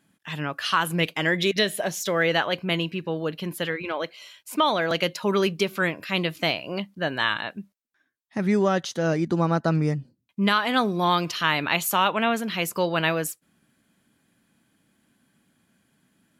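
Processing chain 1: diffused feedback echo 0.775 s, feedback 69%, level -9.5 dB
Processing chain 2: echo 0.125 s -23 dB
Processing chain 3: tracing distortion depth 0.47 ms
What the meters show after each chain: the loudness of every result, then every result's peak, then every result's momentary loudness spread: -24.5, -24.5, -25.0 LUFS; -6.0, -7.0, -7.0 dBFS; 13, 10, 9 LU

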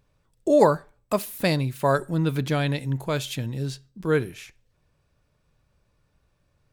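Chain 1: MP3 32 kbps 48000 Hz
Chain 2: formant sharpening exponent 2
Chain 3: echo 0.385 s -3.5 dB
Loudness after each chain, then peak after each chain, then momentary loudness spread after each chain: -25.5, -25.0, -23.5 LUFS; -5.5, -5.5, -5.0 dBFS; 13, 13, 10 LU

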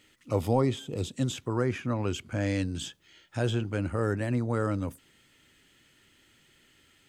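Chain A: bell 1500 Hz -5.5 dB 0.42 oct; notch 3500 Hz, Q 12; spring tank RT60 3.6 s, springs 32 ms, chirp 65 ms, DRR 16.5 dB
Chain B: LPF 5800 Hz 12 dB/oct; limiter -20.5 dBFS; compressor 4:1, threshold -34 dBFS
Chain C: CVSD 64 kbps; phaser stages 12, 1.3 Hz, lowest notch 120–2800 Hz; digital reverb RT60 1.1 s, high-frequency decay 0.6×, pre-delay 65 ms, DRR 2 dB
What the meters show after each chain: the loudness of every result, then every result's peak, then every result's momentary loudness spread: -30.5, -39.0, -30.5 LUFS; -13.0, -22.5, -15.5 dBFS; 11, 5, 9 LU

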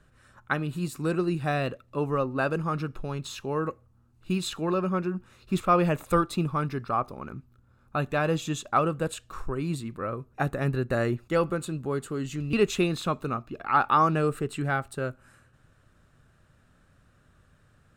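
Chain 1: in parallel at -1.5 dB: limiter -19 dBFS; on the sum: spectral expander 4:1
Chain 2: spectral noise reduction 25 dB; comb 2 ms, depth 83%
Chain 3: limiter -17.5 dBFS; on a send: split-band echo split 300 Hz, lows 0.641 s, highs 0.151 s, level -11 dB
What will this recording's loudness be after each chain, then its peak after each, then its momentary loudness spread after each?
-28.5, -27.0, -29.5 LUFS; -7.5, -9.0, -15.5 dBFS; 22, 10, 11 LU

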